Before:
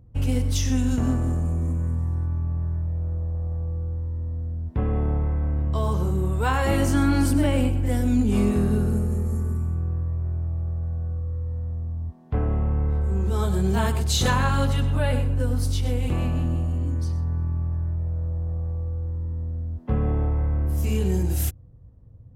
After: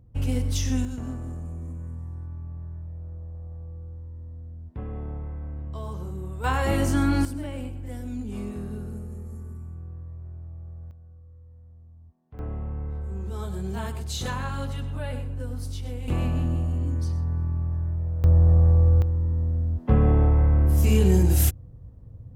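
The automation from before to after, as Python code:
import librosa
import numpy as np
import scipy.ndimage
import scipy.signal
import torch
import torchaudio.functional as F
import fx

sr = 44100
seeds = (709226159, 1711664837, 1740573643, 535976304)

y = fx.gain(x, sr, db=fx.steps((0.0, -2.5), (0.85, -10.5), (6.44, -2.0), (7.25, -12.5), (10.91, -20.0), (12.39, -9.0), (16.08, -1.0), (18.24, 11.0), (19.02, 4.5)))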